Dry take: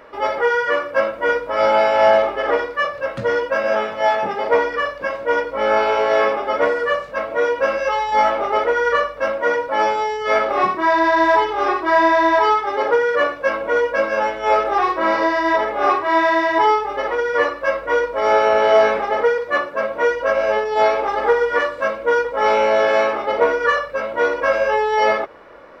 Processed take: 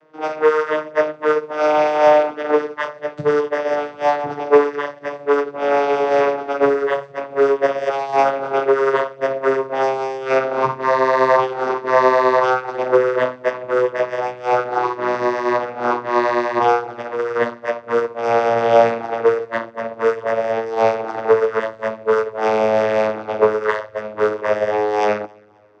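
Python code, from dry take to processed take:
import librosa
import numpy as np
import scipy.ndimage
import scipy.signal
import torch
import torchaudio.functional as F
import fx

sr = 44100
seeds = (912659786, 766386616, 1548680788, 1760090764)

y = fx.vocoder_glide(x, sr, note=51, semitones=-7)
y = fx.bass_treble(y, sr, bass_db=3, treble_db=10)
y = fx.hum_notches(y, sr, base_hz=50, count=5)
y = fx.echo_feedback(y, sr, ms=267, feedback_pct=45, wet_db=-21.0)
y = fx.upward_expand(y, sr, threshold_db=-38.0, expansion=1.5)
y = y * librosa.db_to_amplitude(3.5)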